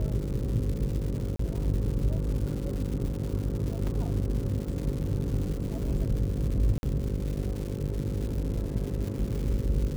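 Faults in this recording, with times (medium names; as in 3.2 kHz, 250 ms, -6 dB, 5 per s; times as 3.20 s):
buzz 50 Hz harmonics 11 -34 dBFS
crackle 310 per s -35 dBFS
1.36–1.39 s: dropout 34 ms
3.87 s: dropout 3.1 ms
6.78–6.83 s: dropout 51 ms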